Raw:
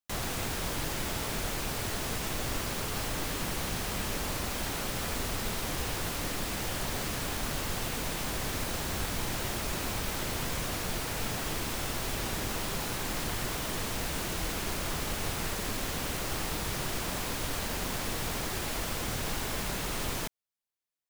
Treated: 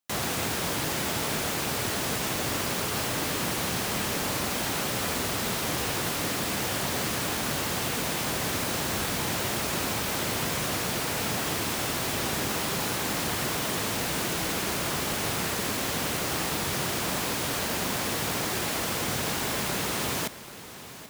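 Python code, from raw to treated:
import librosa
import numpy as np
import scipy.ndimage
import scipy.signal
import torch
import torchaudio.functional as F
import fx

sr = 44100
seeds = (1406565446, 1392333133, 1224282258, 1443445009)

p1 = scipy.signal.sosfilt(scipy.signal.butter(2, 110.0, 'highpass', fs=sr, output='sos'), x)
p2 = p1 + fx.echo_feedback(p1, sr, ms=785, feedback_pct=55, wet_db=-15.5, dry=0)
y = p2 * librosa.db_to_amplitude(5.5)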